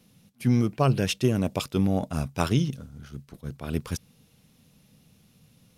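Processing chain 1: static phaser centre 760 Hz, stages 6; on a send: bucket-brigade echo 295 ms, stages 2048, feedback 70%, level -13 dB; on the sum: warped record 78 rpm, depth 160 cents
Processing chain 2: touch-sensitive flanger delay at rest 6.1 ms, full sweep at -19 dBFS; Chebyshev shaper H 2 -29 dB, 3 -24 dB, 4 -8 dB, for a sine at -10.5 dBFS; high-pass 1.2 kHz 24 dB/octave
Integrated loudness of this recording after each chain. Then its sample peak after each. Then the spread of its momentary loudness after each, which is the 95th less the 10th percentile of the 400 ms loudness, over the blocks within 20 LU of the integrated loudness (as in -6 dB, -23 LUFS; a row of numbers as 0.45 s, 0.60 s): -32.0 LUFS, -39.5 LUFS; -14.0 dBFS, -16.0 dBFS; 16 LU, 14 LU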